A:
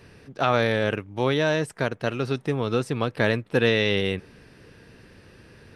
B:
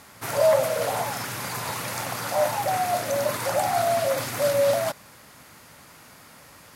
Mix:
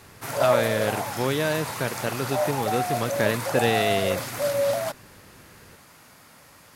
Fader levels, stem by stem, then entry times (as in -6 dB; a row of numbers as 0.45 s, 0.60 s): -2.5 dB, -2.5 dB; 0.00 s, 0.00 s